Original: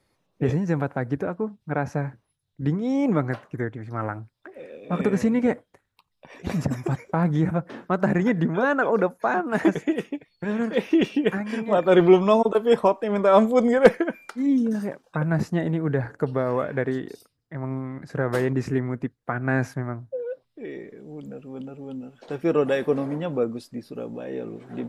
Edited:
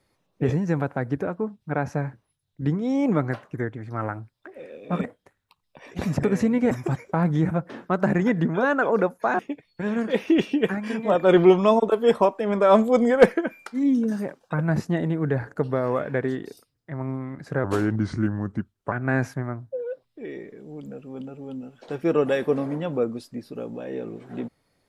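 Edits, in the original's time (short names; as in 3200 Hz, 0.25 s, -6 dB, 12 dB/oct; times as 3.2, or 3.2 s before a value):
5.04–5.52 move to 6.71
9.39–10.02 cut
18.27–19.32 speed 82%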